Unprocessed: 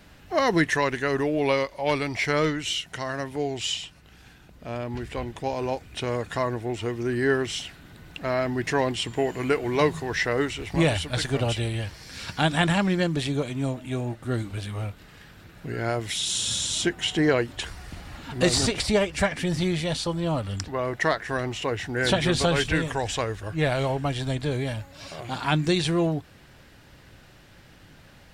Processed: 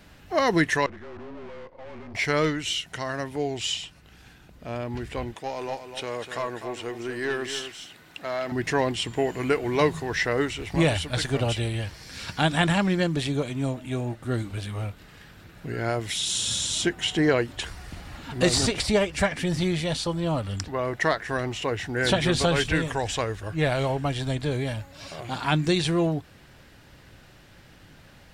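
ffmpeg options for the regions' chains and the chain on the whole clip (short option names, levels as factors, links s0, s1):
-filter_complex "[0:a]asettb=1/sr,asplit=3[s0][s1][s2];[s0]atrim=end=0.864[s3];[s1]atrim=start=0.86:end=2.15,asetpts=PTS-STARTPTS,afade=t=in:d=0.004:c=qsin,afade=t=out:st=1.286:d=0.004:c=qsin,afreqshift=-34,aeval=exprs='(tanh(89.1*val(0)+0.55)-tanh(0.55))/89.1':c=same,adynamicsmooth=sensitivity=4.5:basefreq=1200[s4];[s2]atrim=start=2.146[s5];[s3][s4]acrossfade=d=0.004:c1=hsin:c2=qsin[s6];[s6][s5]acrossfade=d=0.004:c1=qsin:c2=hsin,asettb=1/sr,asplit=3[s7][s8][s9];[s7]atrim=end=5.344[s10];[s8]atrim=start=5.34:end=8.52,asetpts=PTS-STARTPTS,afade=t=in:d=0.004:c=qsin,afade=t=out:st=3.176:d=0.004:c=qsin,highpass=f=480:p=1,aeval=exprs='(tanh(11.2*val(0)+0.15)-tanh(0.15))/11.2':c=same,aecho=1:1:250:0.355,atrim=end_sample=140238[s11];[s9]atrim=start=8.516[s12];[s10][s11]acrossfade=d=0.004:c1=hsin:c2=qsin[s13];[s13][s12]acrossfade=d=0.004:c1=qsin:c2=hsin"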